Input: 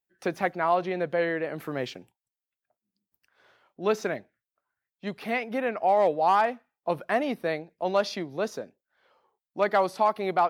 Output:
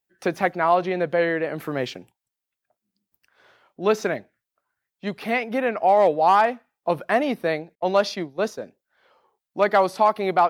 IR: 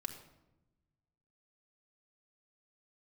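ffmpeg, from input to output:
-filter_complex "[0:a]asettb=1/sr,asplit=3[a][b][c];[a]atrim=end=7.754[d];[b]atrim=start=7.75:end=8.62,asetpts=PTS-STARTPTS,afade=t=in:d=0.004:c=qsin,afade=t=out:st=0.866:d=0.004:c=qsin,agate=range=-33dB:threshold=-30dB:ratio=3:detection=peak[e];[c]atrim=start=8.616[f];[d][e]acrossfade=d=0.004:c1=hsin:c2=qsin[g];[g][f]acrossfade=d=0.004:c1=qsin:c2=hsin,volume=5dB"

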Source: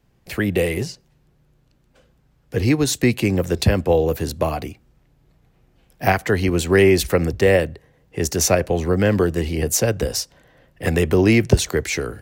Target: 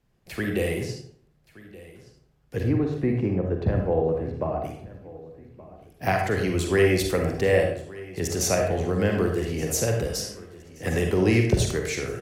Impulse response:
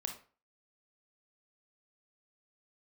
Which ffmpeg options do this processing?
-filter_complex "[0:a]asplit=3[a][b][c];[a]afade=t=out:st=2.62:d=0.02[d];[b]lowpass=1.2k,afade=t=in:st=2.62:d=0.02,afade=t=out:st=4.63:d=0.02[e];[c]afade=t=in:st=4.63:d=0.02[f];[d][e][f]amix=inputs=3:normalize=0,aecho=1:1:1174|2348|3522:0.106|0.0424|0.0169[g];[1:a]atrim=start_sample=2205,asetrate=26901,aresample=44100[h];[g][h]afir=irnorm=-1:irlink=0,volume=-8dB"

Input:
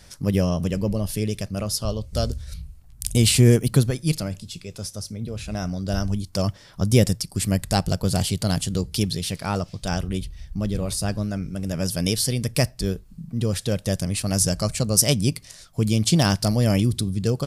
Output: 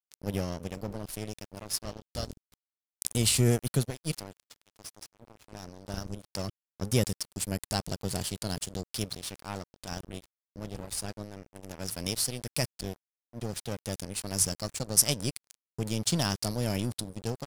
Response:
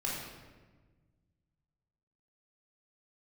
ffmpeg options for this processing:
-af "crystalizer=i=2:c=0,aeval=exprs='sgn(val(0))*max(abs(val(0))-0.0562,0)':c=same,highshelf=f=7.7k:g=-8,volume=-8dB"

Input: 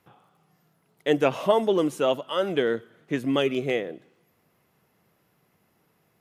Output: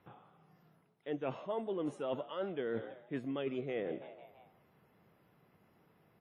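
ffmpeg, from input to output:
-filter_complex "[0:a]highshelf=f=3.1k:g=-11.5,asplit=5[a][b][c][d][e];[b]adelay=165,afreqshift=68,volume=-24dB[f];[c]adelay=330,afreqshift=136,volume=-28.2dB[g];[d]adelay=495,afreqshift=204,volume=-32.3dB[h];[e]adelay=660,afreqshift=272,volume=-36.5dB[i];[a][f][g][h][i]amix=inputs=5:normalize=0,areverse,acompressor=threshold=-35dB:ratio=8,areverse" -ar 44100 -c:a wmav2 -b:a 32k

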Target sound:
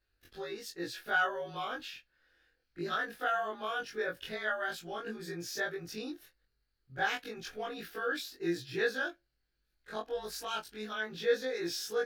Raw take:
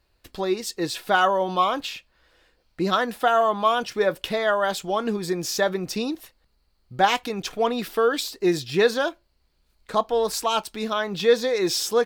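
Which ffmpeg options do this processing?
-af "afftfilt=real='re':imag='-im':win_size=2048:overlap=0.75,equalizer=f=200:t=o:w=0.33:g=-7,equalizer=f=630:t=o:w=0.33:g=-6,equalizer=f=1k:t=o:w=0.33:g=-11,equalizer=f=1.6k:t=o:w=0.33:g=10,equalizer=f=8k:t=o:w=0.33:g=-6,volume=-8dB"

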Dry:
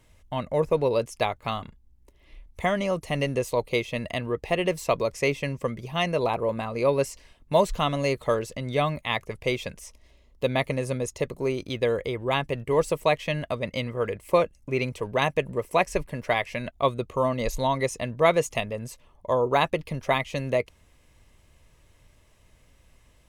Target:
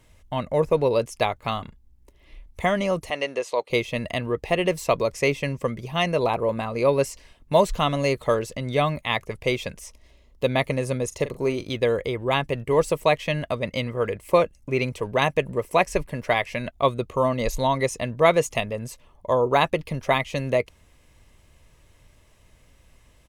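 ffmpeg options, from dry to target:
-filter_complex "[0:a]asettb=1/sr,asplit=3[a][b][c];[a]atrim=end=3.104[d];[b]atrim=start=3.1:end=3.7,asetpts=PTS-STARTPTS,afade=t=in:d=0.004:c=qsin,afade=t=out:st=0.596:d=0.004:c=qsin,highpass=470,lowpass=6.3k[e];[c]atrim=start=3.696[f];[d][e]acrossfade=d=0.004:c1=hsin:c2=qsin[g];[g][f]acrossfade=d=0.004:c1=qsin:c2=hsin,asplit=3[h][i][j];[h]afade=t=out:st=11.1:d=0.02[k];[i]asplit=2[l][m];[m]adelay=42,volume=-12.5dB[n];[l][n]amix=inputs=2:normalize=0,afade=t=in:st=11.1:d=0.02,afade=t=out:st=11.75:d=0.02[o];[j]afade=t=in:st=11.75:d=0.02[p];[k][o][p]amix=inputs=3:normalize=0,volume=2.5dB"

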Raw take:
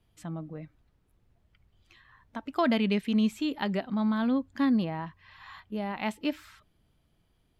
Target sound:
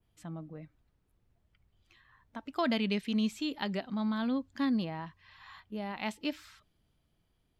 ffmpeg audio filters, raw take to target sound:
-af "adynamicequalizer=threshold=0.00224:dfrequency=5100:dqfactor=0.77:tfrequency=5100:tqfactor=0.77:attack=5:release=100:ratio=0.375:range=3.5:mode=boostabove:tftype=bell,volume=-5dB"

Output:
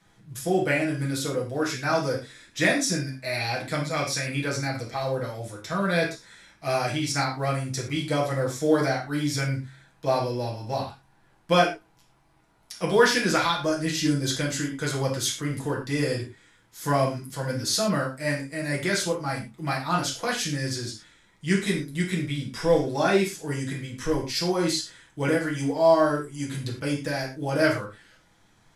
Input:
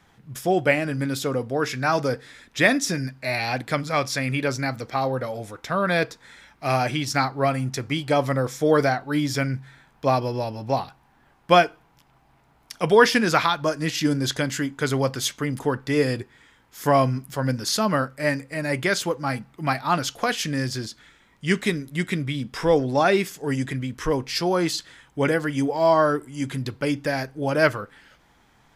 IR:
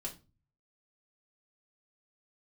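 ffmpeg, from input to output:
-filter_complex "[0:a]bass=f=250:g=-1,treble=f=4k:g=6,acrusher=bits=8:mode=log:mix=0:aa=0.000001[a];[1:a]atrim=start_sample=2205,atrim=end_sample=3087,asetrate=23814,aresample=44100[b];[a][b]afir=irnorm=-1:irlink=0,volume=-6.5dB"

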